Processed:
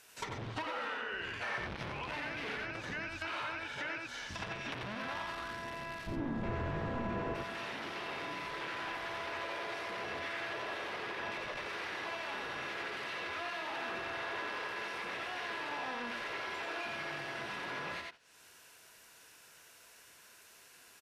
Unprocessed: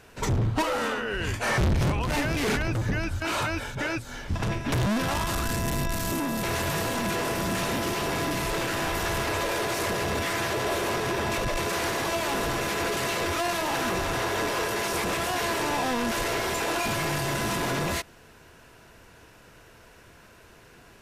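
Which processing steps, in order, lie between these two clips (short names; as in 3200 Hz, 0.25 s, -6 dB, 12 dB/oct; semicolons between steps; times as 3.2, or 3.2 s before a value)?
tilt +4 dB/oct, from 6.06 s -1.5 dB/oct, from 7.34 s +4 dB/oct; echo 88 ms -3.5 dB; dynamic EQ 7200 Hz, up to -7 dB, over -40 dBFS, Q 2.1; gate -35 dBFS, range -11 dB; compressor 2:1, threshold -44 dBFS, peak gain reduction 13.5 dB; treble ducked by the level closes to 2400 Hz, closed at -34.5 dBFS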